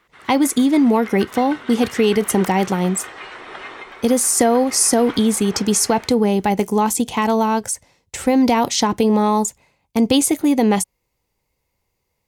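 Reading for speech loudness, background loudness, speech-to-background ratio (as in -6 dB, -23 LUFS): -17.5 LUFS, -35.5 LUFS, 18.0 dB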